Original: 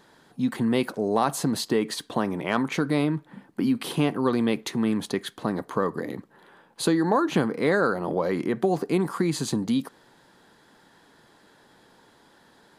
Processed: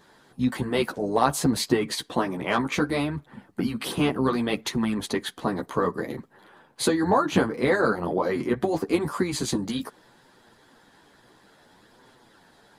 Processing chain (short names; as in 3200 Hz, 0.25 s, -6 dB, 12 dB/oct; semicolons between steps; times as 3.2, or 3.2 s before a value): chorus voices 2, 0.62 Hz, delay 12 ms, depth 4.3 ms; harmoniser -12 st -15 dB; harmonic-percussive split percussive +6 dB